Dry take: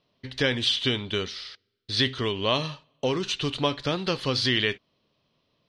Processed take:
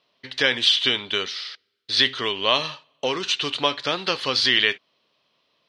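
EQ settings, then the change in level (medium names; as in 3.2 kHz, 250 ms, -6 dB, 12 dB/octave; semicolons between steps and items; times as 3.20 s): high-pass 990 Hz 6 dB/octave; treble shelf 8.7 kHz -11 dB; +8.0 dB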